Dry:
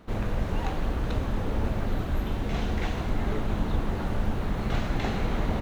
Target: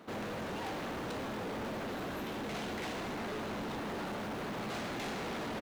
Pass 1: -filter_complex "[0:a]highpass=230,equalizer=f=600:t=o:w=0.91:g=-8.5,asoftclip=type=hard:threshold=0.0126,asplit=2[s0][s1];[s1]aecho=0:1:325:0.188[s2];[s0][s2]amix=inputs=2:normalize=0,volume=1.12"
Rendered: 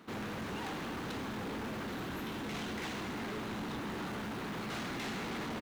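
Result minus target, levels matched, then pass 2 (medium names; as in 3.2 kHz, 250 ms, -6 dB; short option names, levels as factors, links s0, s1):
echo 230 ms early; 500 Hz band -3.0 dB
-filter_complex "[0:a]highpass=230,asoftclip=type=hard:threshold=0.0126,asplit=2[s0][s1];[s1]aecho=0:1:555:0.188[s2];[s0][s2]amix=inputs=2:normalize=0,volume=1.12"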